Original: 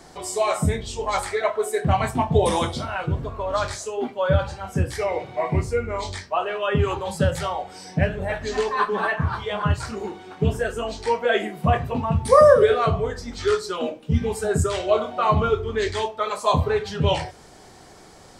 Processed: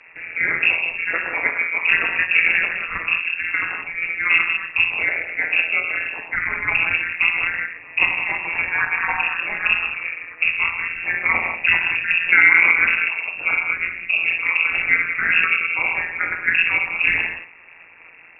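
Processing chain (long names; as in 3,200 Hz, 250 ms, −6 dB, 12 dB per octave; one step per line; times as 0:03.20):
reverb whose tail is shaped and stops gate 220 ms flat, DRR 1.5 dB
amplitude modulation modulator 170 Hz, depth 95%
in parallel at −11 dB: sample-rate reduction 1,800 Hz, jitter 0%
on the sum: voice inversion scrambler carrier 2,700 Hz
high-frequency loss of the air 88 metres
boost into a limiter +4.5 dB
level −1 dB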